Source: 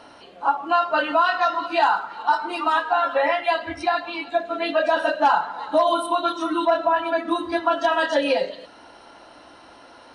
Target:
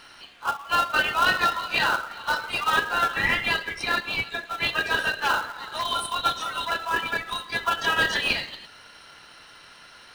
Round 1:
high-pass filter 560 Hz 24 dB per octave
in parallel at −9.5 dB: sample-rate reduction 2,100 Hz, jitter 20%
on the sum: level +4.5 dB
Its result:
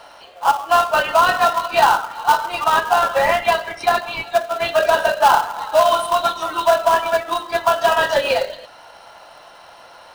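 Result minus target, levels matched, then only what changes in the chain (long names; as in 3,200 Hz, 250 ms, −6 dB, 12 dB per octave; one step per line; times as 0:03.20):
500 Hz band +10.5 dB
change: high-pass filter 1,400 Hz 24 dB per octave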